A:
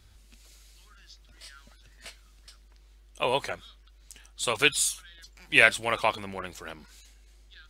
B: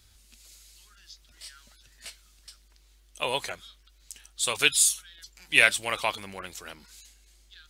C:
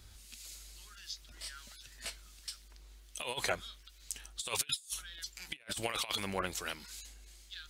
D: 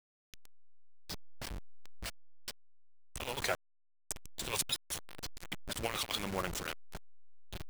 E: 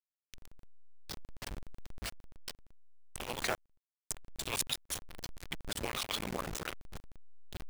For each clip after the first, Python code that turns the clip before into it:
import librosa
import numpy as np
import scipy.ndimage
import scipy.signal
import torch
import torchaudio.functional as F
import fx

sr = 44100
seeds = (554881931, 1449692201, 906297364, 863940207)

y1 = fx.high_shelf(x, sr, hz=2800.0, db=11.0)
y1 = y1 * librosa.db_to_amplitude(-4.5)
y2 = fx.over_compress(y1, sr, threshold_db=-33.0, ratio=-0.5)
y2 = fx.harmonic_tremolo(y2, sr, hz=1.4, depth_pct=50, crossover_hz=1500.0)
y2 = y2 * librosa.db_to_amplitude(-1.5)
y3 = fx.delta_hold(y2, sr, step_db=-34.5)
y4 = fx.cycle_switch(y3, sr, every=3, mode='muted')
y4 = y4 * librosa.db_to_amplitude(1.5)